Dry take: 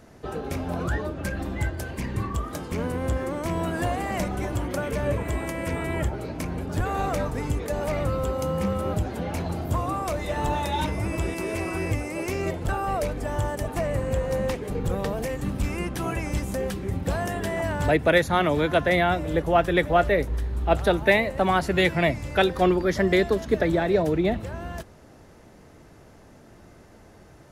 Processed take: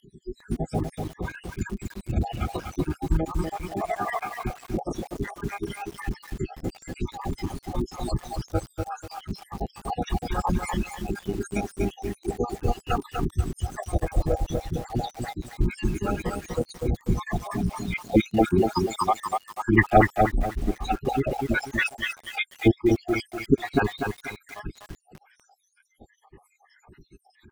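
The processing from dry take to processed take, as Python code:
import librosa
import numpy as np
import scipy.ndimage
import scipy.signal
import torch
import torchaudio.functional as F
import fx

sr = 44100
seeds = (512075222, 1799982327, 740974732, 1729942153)

y = fx.spec_dropout(x, sr, seeds[0], share_pct=81)
y = fx.pitch_keep_formants(y, sr, semitones=-8.5)
y = fx.echo_crushed(y, sr, ms=244, feedback_pct=35, bits=8, wet_db=-4.0)
y = y * librosa.db_to_amplitude(5.5)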